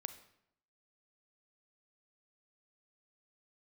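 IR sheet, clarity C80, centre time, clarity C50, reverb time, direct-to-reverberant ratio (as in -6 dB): 14.5 dB, 8 ms, 12.0 dB, 0.75 s, 10.5 dB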